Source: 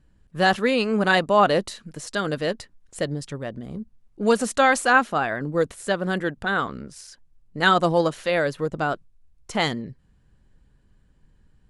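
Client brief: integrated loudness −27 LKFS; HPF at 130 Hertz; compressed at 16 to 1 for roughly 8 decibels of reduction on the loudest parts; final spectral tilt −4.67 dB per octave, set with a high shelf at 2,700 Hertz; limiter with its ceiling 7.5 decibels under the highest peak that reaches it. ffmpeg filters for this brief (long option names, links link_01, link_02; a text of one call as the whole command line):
ffmpeg -i in.wav -af "highpass=130,highshelf=frequency=2700:gain=-9,acompressor=threshold=-21dB:ratio=16,volume=3.5dB,alimiter=limit=-15.5dB:level=0:latency=1" out.wav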